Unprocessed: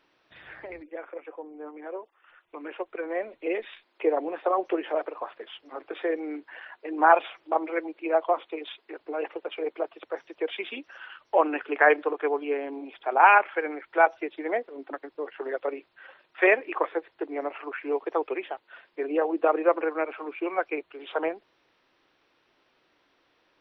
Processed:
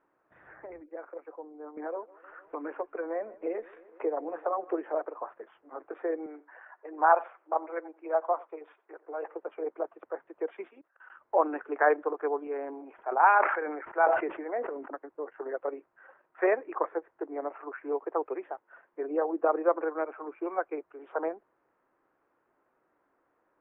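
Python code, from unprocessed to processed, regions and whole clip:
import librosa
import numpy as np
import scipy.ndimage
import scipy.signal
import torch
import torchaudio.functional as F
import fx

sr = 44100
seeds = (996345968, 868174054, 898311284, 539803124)

y = fx.chain(x, sr, fx.notch(hz=370.0, q=11.0),
    fx.echo_feedback(ms=152, feedback_pct=56, wet_db=-23.5),
    fx.band_squash(depth_pct=70), at=(1.77, 4.72))
y = fx.chain(y, sr, fx.bandpass_edges(low_hz=450.0, high_hz=3300.0),
    fx.echo_single(ms=89, db=-21.0), at=(6.26, 9.34))
y = fx.chain(y, sr, fx.highpass(hz=440.0, slope=6),
    fx.level_steps(step_db=23), at=(10.68, 11.1))
y = fx.chain(y, sr, fx.steep_lowpass(hz=3100.0, slope=72),
    fx.low_shelf(hz=390.0, db=-8.0),
    fx.sustainer(db_per_s=42.0), at=(12.47, 14.88))
y = scipy.signal.sosfilt(scipy.signal.butter(4, 1500.0, 'lowpass', fs=sr, output='sos'), y)
y = fx.low_shelf(y, sr, hz=190.0, db=-6.5)
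y = F.gain(torch.from_numpy(y), -2.5).numpy()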